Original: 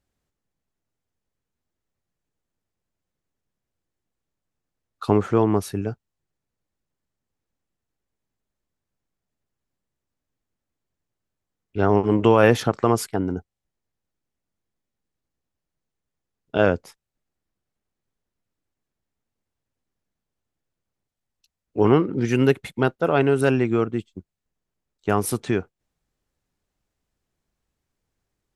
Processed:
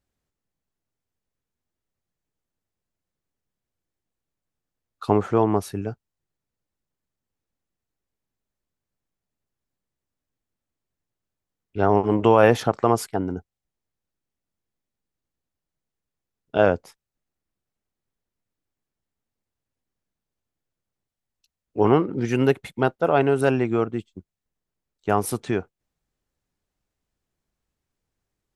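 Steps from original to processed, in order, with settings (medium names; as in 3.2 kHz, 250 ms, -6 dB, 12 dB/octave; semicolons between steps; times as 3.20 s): dynamic bell 750 Hz, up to +6 dB, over -32 dBFS, Q 1.3; trim -2.5 dB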